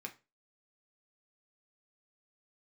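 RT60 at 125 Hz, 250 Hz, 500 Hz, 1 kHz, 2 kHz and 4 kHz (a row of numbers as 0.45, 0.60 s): 0.35, 0.30, 0.30, 0.25, 0.25, 0.25 s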